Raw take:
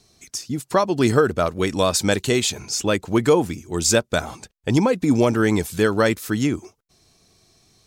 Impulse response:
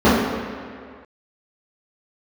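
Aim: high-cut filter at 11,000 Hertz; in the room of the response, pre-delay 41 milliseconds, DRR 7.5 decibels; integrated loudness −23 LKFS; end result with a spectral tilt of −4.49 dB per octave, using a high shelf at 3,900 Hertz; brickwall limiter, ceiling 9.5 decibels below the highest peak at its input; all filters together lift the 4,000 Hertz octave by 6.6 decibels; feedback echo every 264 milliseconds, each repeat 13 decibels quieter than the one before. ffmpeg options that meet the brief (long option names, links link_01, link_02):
-filter_complex "[0:a]lowpass=11000,highshelf=frequency=3900:gain=6,equalizer=frequency=4000:width_type=o:gain=4.5,alimiter=limit=-9.5dB:level=0:latency=1,aecho=1:1:264|528|792:0.224|0.0493|0.0108,asplit=2[link_01][link_02];[1:a]atrim=start_sample=2205,adelay=41[link_03];[link_02][link_03]afir=irnorm=-1:irlink=0,volume=-35.5dB[link_04];[link_01][link_04]amix=inputs=2:normalize=0,volume=-4dB"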